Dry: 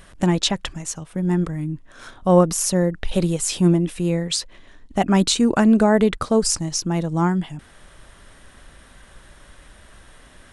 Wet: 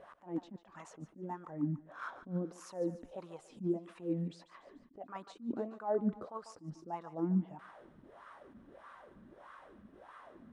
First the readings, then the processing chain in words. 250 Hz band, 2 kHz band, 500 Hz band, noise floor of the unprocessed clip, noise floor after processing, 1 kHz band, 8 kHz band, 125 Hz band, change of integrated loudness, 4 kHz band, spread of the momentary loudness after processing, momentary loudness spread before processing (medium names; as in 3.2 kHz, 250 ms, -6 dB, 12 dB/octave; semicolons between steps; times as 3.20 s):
-19.0 dB, -22.0 dB, -19.0 dB, -49 dBFS, -63 dBFS, -18.5 dB, under -35 dB, -20.0 dB, -19.5 dB, -35.5 dB, 22 LU, 13 LU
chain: compression 6:1, threshold -28 dBFS, peak gain reduction 18 dB; wah-wah 1.6 Hz 210–1200 Hz, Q 5.1; thinning echo 145 ms, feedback 54%, high-pass 720 Hz, level -13 dB; attacks held to a fixed rise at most 210 dB/s; trim +7 dB